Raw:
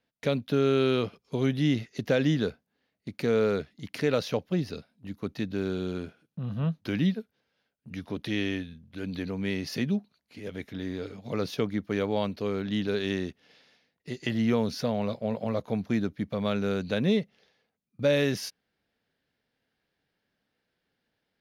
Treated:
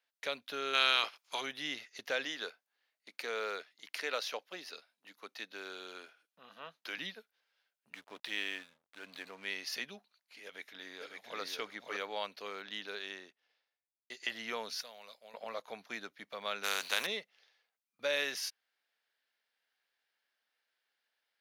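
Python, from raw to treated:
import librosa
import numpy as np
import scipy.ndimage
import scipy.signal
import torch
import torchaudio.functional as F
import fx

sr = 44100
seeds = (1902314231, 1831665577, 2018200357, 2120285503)

y = fx.spec_clip(x, sr, under_db=20, at=(0.73, 1.4), fade=0.02)
y = fx.highpass(y, sr, hz=250.0, slope=12, at=(2.25, 6.98))
y = fx.backlash(y, sr, play_db=-43.5, at=(7.93, 9.45))
y = fx.echo_throw(y, sr, start_s=10.44, length_s=0.96, ms=560, feedback_pct=15, wet_db=-2.5)
y = fx.studio_fade_out(y, sr, start_s=12.55, length_s=1.55)
y = fx.pre_emphasis(y, sr, coefficient=0.8, at=(14.81, 15.34))
y = fx.spec_flatten(y, sr, power=0.55, at=(16.63, 17.05), fade=0.02)
y = scipy.signal.sosfilt(scipy.signal.butter(2, 960.0, 'highpass', fs=sr, output='sos'), y)
y = y * librosa.db_to_amplitude(-1.5)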